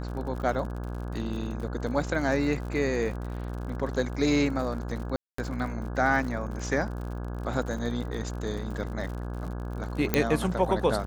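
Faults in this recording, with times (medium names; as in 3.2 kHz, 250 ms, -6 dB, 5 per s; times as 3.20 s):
buzz 60 Hz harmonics 28 -34 dBFS
crackle 65 per s -36 dBFS
5.16–5.38 s: dropout 224 ms
10.14 s: pop -8 dBFS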